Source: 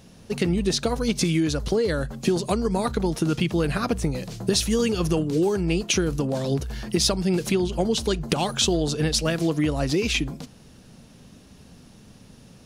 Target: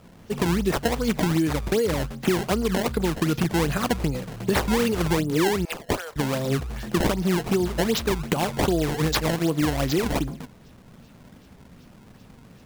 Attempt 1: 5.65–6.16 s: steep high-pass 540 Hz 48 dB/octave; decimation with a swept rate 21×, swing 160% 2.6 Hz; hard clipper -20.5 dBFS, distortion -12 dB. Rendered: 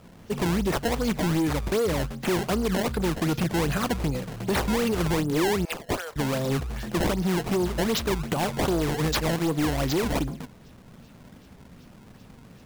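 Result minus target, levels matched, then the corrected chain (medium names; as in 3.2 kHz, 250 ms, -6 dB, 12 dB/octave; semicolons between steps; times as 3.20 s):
hard clipper: distortion +19 dB
5.65–6.16 s: steep high-pass 540 Hz 48 dB/octave; decimation with a swept rate 21×, swing 160% 2.6 Hz; hard clipper -12.5 dBFS, distortion -31 dB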